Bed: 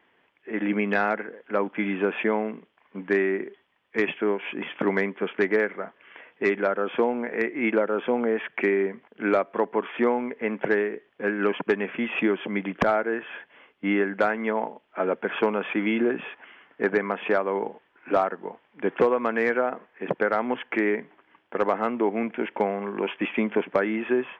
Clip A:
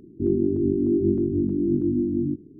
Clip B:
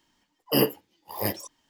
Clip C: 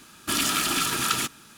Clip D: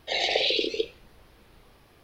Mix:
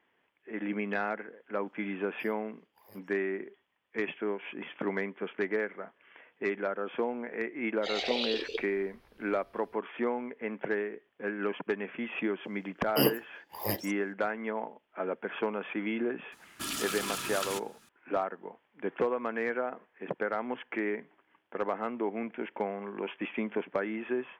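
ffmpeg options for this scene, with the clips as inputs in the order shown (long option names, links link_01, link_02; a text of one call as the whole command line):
ffmpeg -i bed.wav -i cue0.wav -i cue1.wav -i cue2.wav -i cue3.wav -filter_complex "[2:a]asplit=2[link_01][link_02];[0:a]volume=-8.5dB[link_03];[link_01]aeval=exprs='val(0)*pow(10,-31*if(lt(mod(1.2*n/s,1),2*abs(1.2)/1000),1-mod(1.2*n/s,1)/(2*abs(1.2)/1000),(mod(1.2*n/s,1)-2*abs(1.2)/1000)/(1-2*abs(1.2)/1000))/20)':channel_layout=same[link_04];[link_02]equalizer=frequency=9400:width_type=o:width=0.24:gain=-3[link_05];[link_04]atrim=end=1.69,asetpts=PTS-STARTPTS,volume=-14dB,afade=type=in:duration=0.004:curve=hsin,afade=type=out:start_time=1.686:duration=0.004:curve=hsin,adelay=1670[link_06];[4:a]atrim=end=2.03,asetpts=PTS-STARTPTS,volume=-8.5dB,afade=type=in:duration=0.05,afade=type=out:start_time=1.98:duration=0.05,adelay=7750[link_07];[link_05]atrim=end=1.69,asetpts=PTS-STARTPTS,volume=-4dB,afade=type=in:duration=0.004:curve=hsin,afade=type=out:start_time=1.686:duration=0.004:curve=hsin,adelay=12440[link_08];[3:a]atrim=end=1.57,asetpts=PTS-STARTPTS,volume=-11dB,afade=type=in:duration=0.004:curve=hsin,afade=type=out:start_time=1.566:duration=0.004:curve=hsin,adelay=16320[link_09];[link_03][link_06][link_07][link_08][link_09]amix=inputs=5:normalize=0" out.wav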